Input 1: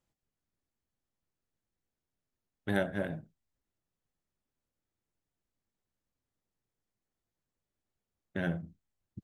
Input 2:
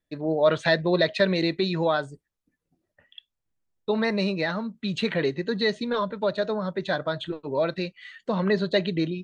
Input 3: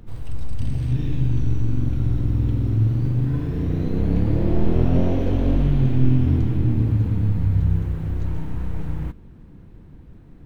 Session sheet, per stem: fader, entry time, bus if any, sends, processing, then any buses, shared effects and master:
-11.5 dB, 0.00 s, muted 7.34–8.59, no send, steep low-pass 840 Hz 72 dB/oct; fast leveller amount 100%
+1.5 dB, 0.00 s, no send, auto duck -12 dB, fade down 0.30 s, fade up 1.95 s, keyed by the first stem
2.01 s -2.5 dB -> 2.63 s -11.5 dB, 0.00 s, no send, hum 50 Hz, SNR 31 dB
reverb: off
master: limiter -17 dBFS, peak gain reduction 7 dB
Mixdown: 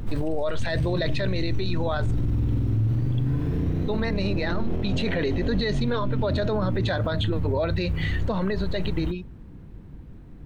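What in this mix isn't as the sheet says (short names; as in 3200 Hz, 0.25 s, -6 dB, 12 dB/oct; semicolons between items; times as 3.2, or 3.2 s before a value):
stem 1 -11.5 dB -> -23.0 dB; stem 2 +1.5 dB -> +12.0 dB; stem 3 -2.5 dB -> +9.5 dB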